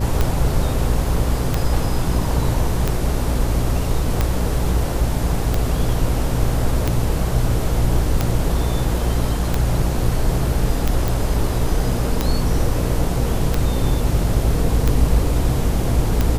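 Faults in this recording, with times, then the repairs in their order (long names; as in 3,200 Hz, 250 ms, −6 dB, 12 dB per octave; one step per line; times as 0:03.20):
mains buzz 60 Hz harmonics 9 −23 dBFS
scratch tick 45 rpm −5 dBFS
0:11.08: click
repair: click removal
hum removal 60 Hz, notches 9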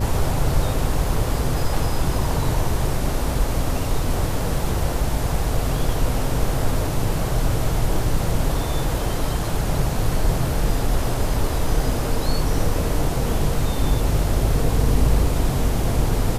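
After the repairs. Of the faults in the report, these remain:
none of them is left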